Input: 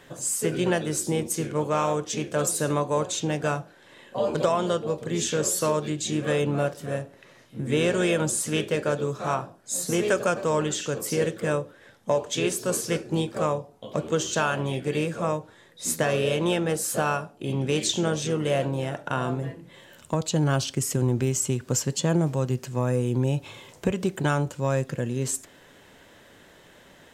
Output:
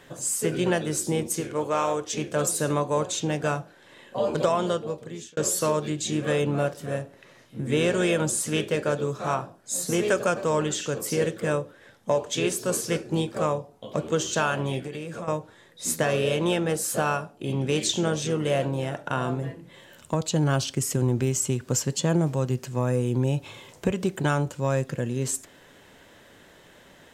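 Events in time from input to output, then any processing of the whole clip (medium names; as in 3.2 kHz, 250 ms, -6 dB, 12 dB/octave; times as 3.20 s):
1.40–2.18 s: peaking EQ 170 Hz -10 dB
4.66–5.37 s: fade out
14.85–15.28 s: compression 12:1, threshold -30 dBFS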